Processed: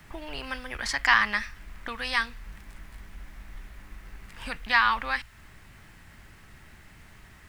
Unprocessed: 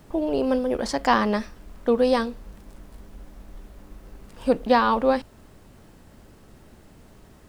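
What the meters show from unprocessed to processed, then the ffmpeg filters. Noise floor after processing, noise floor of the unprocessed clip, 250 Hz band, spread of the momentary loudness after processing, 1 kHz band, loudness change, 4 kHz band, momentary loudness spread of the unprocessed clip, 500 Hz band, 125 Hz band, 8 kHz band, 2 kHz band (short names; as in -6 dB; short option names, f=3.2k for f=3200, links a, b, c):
-52 dBFS, -51 dBFS, -19.0 dB, 18 LU, -4.5 dB, -3.5 dB, +3.0 dB, 10 LU, -21.5 dB, -5.0 dB, n/a, +7.0 dB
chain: -filter_complex "[0:a]acrossover=split=120|980|3500[a][b][c][d];[b]acompressor=threshold=-35dB:ratio=6[e];[a][e][c][d]amix=inputs=4:normalize=0,equalizer=f=250:t=o:w=1:g=-6,equalizer=f=500:t=o:w=1:g=-10,equalizer=f=2k:t=o:w=1:g=11"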